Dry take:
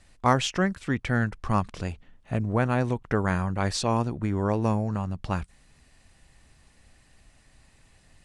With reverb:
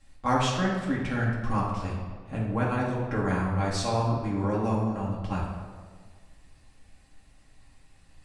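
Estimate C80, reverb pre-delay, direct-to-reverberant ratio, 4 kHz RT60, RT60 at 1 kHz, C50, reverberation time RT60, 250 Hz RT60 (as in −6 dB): 4.0 dB, 4 ms, −6.5 dB, 1.0 s, 1.6 s, 1.5 dB, 1.7 s, 1.7 s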